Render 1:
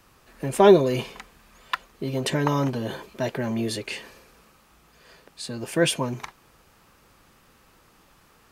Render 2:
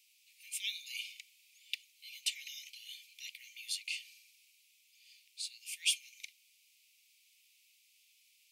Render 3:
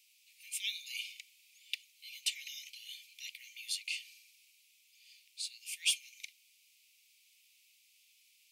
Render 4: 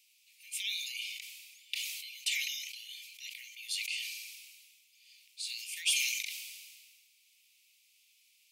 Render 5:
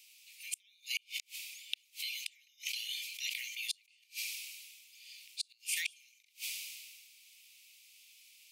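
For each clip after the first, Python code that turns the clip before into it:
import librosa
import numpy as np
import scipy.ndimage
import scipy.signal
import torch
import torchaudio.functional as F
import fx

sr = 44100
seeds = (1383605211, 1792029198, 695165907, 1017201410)

y1 = scipy.signal.sosfilt(scipy.signal.butter(16, 2200.0, 'highpass', fs=sr, output='sos'), x)
y1 = y1 * 10.0 ** (-4.5 / 20.0)
y2 = 10.0 ** (-16.5 / 20.0) * np.tanh(y1 / 10.0 ** (-16.5 / 20.0))
y2 = y2 * 10.0 ** (1.0 / 20.0)
y3 = fx.sustainer(y2, sr, db_per_s=34.0)
y4 = fx.gate_flip(y3, sr, shuts_db=-28.0, range_db=-38)
y4 = y4 * 10.0 ** (7.0 / 20.0)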